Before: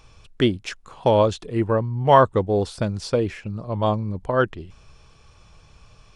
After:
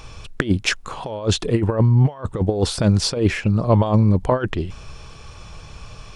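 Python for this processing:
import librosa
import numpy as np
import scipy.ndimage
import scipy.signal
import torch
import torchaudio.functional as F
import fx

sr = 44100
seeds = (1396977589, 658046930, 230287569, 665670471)

y = fx.over_compress(x, sr, threshold_db=-24.0, ratio=-0.5)
y = F.gain(torch.from_numpy(y), 7.5).numpy()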